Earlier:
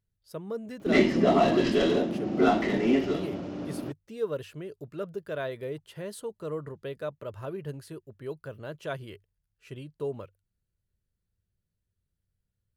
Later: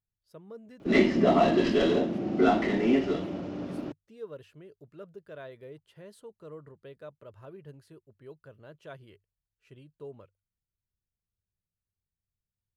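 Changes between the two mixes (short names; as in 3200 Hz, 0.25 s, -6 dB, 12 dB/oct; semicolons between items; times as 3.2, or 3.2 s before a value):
speech -10.5 dB; master: add high shelf 6600 Hz -6.5 dB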